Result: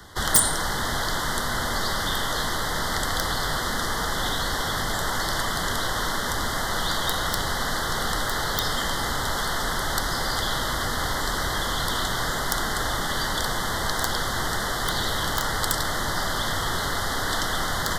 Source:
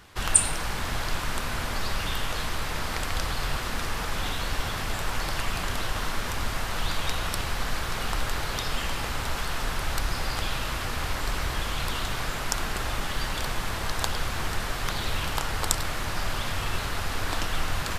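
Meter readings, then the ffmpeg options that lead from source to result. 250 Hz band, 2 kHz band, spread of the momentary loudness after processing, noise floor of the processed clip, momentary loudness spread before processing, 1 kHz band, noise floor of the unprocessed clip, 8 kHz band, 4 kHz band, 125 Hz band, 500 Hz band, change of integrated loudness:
+4.5 dB, +5.0 dB, 1 LU, −27 dBFS, 2 LU, +5.5 dB, −32 dBFS, +3.0 dB, +5.5 dB, +0.5 dB, +5.5 dB, +4.5 dB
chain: -filter_complex "[0:a]acrossover=split=130|1100[link_01][link_02][link_03];[link_02]aeval=exprs='0.0211*(abs(mod(val(0)/0.0211+3,4)-2)-1)':channel_layout=same[link_04];[link_01][link_04][link_03]amix=inputs=3:normalize=0,apsyclip=6.5dB,acrossover=split=140[link_05][link_06];[link_05]acompressor=threshold=-29dB:ratio=6[link_07];[link_07][link_06]amix=inputs=2:normalize=0,aeval=exprs='(mod(2.51*val(0)+1,2)-1)/2.51':channel_layout=same,asuperstop=centerf=2500:order=12:qfactor=2.6"

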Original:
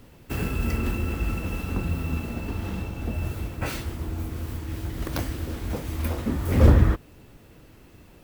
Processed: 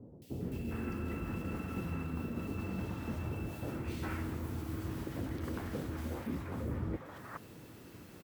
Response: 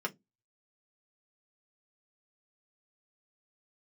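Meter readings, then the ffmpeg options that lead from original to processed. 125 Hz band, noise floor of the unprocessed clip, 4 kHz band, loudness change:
−14.0 dB, −52 dBFS, −13.0 dB, −12.5 dB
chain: -filter_complex "[0:a]acrossover=split=2500[link_01][link_02];[link_02]acompressor=threshold=-50dB:ratio=4:attack=1:release=60[link_03];[link_01][link_03]amix=inputs=2:normalize=0,highpass=110,areverse,acompressor=threshold=-35dB:ratio=10,areverse,acrossover=split=660|2600[link_04][link_05][link_06];[link_06]adelay=220[link_07];[link_05]adelay=410[link_08];[link_04][link_08][link_07]amix=inputs=3:normalize=0,volume=1dB"

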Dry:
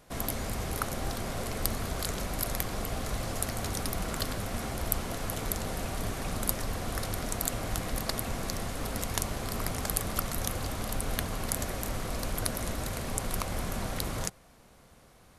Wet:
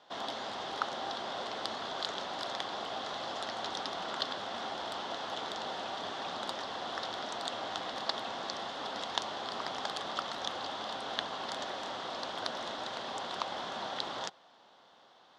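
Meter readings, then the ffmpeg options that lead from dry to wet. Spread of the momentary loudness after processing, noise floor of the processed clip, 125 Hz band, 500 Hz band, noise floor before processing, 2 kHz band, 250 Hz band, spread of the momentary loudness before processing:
3 LU, −61 dBFS, −22.0 dB, −2.5 dB, −57 dBFS, −2.0 dB, −10.0 dB, 3 LU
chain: -af "highpass=430,equalizer=frequency=470:width_type=q:width=4:gain=-4,equalizer=frequency=860:width_type=q:width=4:gain=6,equalizer=frequency=2300:width_type=q:width=4:gain=-9,equalizer=frequency=3400:width_type=q:width=4:gain=9,lowpass=frequency=4900:width=0.5412,lowpass=frequency=4900:width=1.3066"

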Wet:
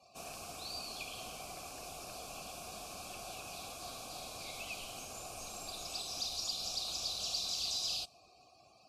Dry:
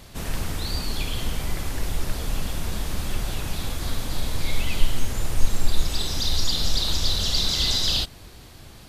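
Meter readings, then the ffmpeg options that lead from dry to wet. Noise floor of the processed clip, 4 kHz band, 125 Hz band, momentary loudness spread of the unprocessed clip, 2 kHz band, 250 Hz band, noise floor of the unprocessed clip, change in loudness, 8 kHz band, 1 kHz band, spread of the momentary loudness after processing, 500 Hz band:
−64 dBFS, −13.0 dB, −28.0 dB, 10 LU, −13.5 dB, −21.0 dB, −45 dBFS, −13.0 dB, −9.0 dB, −8.5 dB, 11 LU, −11.5 dB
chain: -filter_complex "[0:a]acrossover=split=160|4300[link_01][link_02][link_03];[link_02]alimiter=limit=-24dB:level=0:latency=1:release=194[link_04];[link_01][link_04][link_03]amix=inputs=3:normalize=0,asplit=3[link_05][link_06][link_07];[link_05]bandpass=frequency=730:width_type=q:width=8,volume=0dB[link_08];[link_06]bandpass=frequency=1090:width_type=q:width=8,volume=-6dB[link_09];[link_07]bandpass=frequency=2440:width_type=q:width=8,volume=-9dB[link_10];[link_08][link_09][link_10]amix=inputs=3:normalize=0,equalizer=frequency=880:width_type=o:width=2.5:gain=-7.5,aexciter=amount=2.8:drive=9.3:freq=4600,afftdn=noise_reduction=20:noise_floor=-68,volume=5.5dB"

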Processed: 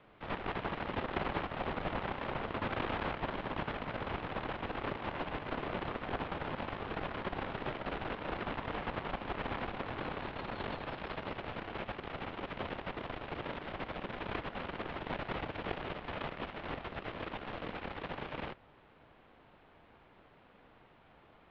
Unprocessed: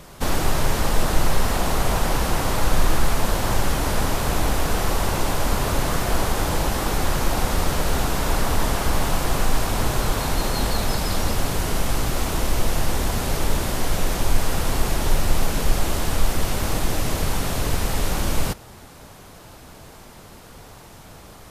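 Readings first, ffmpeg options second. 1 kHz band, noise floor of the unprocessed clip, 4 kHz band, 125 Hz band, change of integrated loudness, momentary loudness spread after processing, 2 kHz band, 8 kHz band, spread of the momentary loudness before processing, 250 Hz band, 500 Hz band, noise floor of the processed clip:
−12.5 dB, −44 dBFS, −18.0 dB, −19.5 dB, −15.5 dB, 5 LU, −11.5 dB, below −40 dB, 21 LU, −14.0 dB, −12.5 dB, −62 dBFS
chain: -af "aeval=exprs='0.631*(cos(1*acos(clip(val(0)/0.631,-1,1)))-cos(1*PI/2))+0.126*(cos(3*acos(clip(val(0)/0.631,-1,1)))-cos(3*PI/2))+0.0251*(cos(4*acos(clip(val(0)/0.631,-1,1)))-cos(4*PI/2))+0.0178*(cos(8*acos(clip(val(0)/0.631,-1,1)))-cos(8*PI/2))':channel_layout=same,highpass=frequency=370:width_type=q:width=0.5412,highpass=frequency=370:width_type=q:width=1.307,lowpass=frequency=3300:width_type=q:width=0.5176,lowpass=frequency=3300:width_type=q:width=0.7071,lowpass=frequency=3300:width_type=q:width=1.932,afreqshift=-350,aeval=exprs='val(0)*sin(2*PI*380*n/s)':channel_layout=same,volume=-2.5dB"

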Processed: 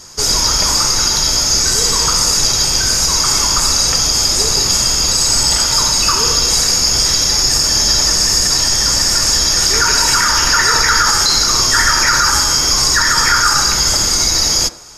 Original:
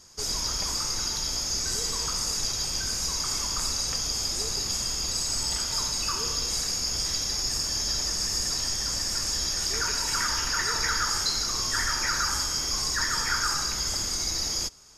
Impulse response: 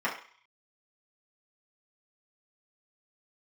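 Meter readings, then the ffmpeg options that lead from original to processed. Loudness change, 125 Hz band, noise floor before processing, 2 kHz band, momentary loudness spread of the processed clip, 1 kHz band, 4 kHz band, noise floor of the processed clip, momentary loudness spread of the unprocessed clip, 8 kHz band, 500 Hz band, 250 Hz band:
+15.0 dB, +14.5 dB, −31 dBFS, +15.5 dB, 1 LU, +16.5 dB, +15.0 dB, −15 dBFS, 2 LU, +15.5 dB, +15.5 dB, +14.5 dB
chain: -filter_complex "[0:a]asplit=2[link_01][link_02];[1:a]atrim=start_sample=2205,asetrate=32193,aresample=44100[link_03];[link_02][link_03]afir=irnorm=-1:irlink=0,volume=-19.5dB[link_04];[link_01][link_04]amix=inputs=2:normalize=0,alimiter=level_in=16dB:limit=-1dB:release=50:level=0:latency=1,volume=-1dB"

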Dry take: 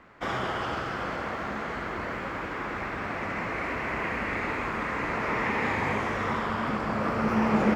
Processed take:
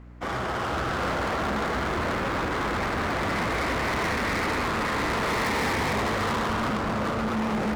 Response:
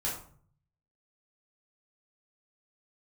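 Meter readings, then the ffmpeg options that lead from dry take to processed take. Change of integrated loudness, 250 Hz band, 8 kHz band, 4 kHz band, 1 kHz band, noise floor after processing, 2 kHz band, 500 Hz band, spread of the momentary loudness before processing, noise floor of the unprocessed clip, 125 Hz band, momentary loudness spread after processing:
+3.0 dB, +1.0 dB, +12.0 dB, +8.0 dB, +3.0 dB, −29 dBFS, +2.5 dB, +3.0 dB, 6 LU, −34 dBFS, +4.0 dB, 2 LU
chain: -filter_complex "[0:a]asplit=2[link_01][link_02];[link_02]adynamicsmooth=sensitivity=4.5:basefreq=780,volume=2dB[link_03];[link_01][link_03]amix=inputs=2:normalize=0,equalizer=frequency=73:width_type=o:width=0.43:gain=6,dynaudnorm=framelen=120:gausssize=13:maxgain=9dB,aemphasis=mode=production:type=cd,asoftclip=type=hard:threshold=-18dB,aeval=exprs='val(0)+0.0126*(sin(2*PI*60*n/s)+sin(2*PI*2*60*n/s)/2+sin(2*PI*3*60*n/s)/3+sin(2*PI*4*60*n/s)/4+sin(2*PI*5*60*n/s)/5)':channel_layout=same,volume=-6dB"

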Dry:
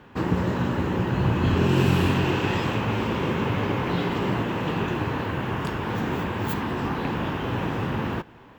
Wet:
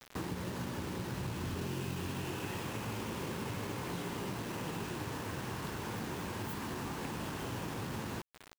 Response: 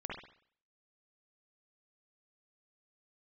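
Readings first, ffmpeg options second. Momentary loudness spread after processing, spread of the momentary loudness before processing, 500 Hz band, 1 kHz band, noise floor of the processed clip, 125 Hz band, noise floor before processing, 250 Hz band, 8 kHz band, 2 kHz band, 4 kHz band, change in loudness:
1 LU, 7 LU, −14.5 dB, −13.5 dB, −55 dBFS, −15.5 dB, −48 dBFS, −15.0 dB, 0.0 dB, −13.5 dB, −10.5 dB, −14.0 dB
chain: -af "acompressor=threshold=-35dB:ratio=4,bandreject=frequency=250.4:width_type=h:width=4,bandreject=frequency=500.8:width_type=h:width=4,acrusher=bits=6:mix=0:aa=0.000001,volume=-3.5dB"

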